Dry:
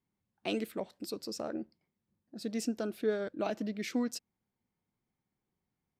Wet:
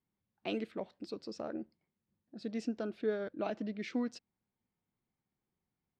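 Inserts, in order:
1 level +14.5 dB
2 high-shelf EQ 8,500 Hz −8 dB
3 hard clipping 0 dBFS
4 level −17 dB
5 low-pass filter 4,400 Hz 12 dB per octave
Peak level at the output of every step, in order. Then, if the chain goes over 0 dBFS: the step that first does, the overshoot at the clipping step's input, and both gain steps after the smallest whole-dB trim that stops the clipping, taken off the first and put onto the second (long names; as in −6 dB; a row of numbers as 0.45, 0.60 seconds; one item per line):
−6.0, −6.0, −6.0, −23.0, −23.0 dBFS
no step passes full scale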